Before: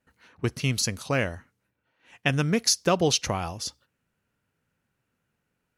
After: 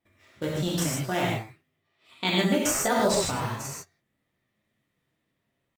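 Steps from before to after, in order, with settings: in parallel at -5 dB: decimation with a swept rate 9×, swing 160% 0.36 Hz; on the sum: pitch shift +4.5 st; gated-style reverb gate 180 ms flat, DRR -5 dB; trim -9 dB

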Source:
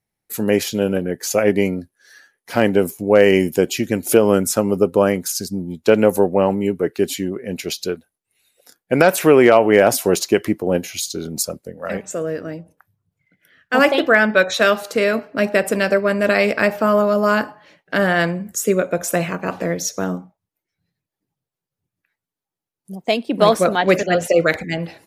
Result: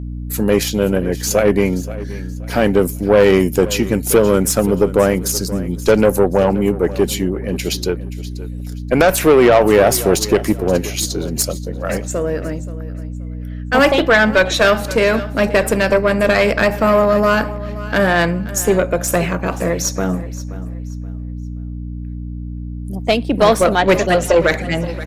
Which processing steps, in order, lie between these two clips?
hum 60 Hz, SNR 11 dB; valve stage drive 9 dB, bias 0.35; feedback delay 527 ms, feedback 28%, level -16.5 dB; trim +5 dB

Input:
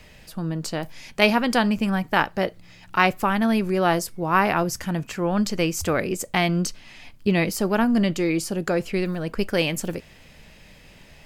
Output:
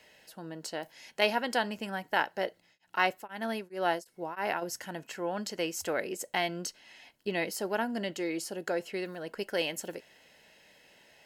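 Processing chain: tone controls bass -15 dB, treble 0 dB; comb of notches 1.2 kHz; 2.46–4.61 s: tremolo of two beating tones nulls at 1.6 Hz -> 3.8 Hz; trim -6.5 dB

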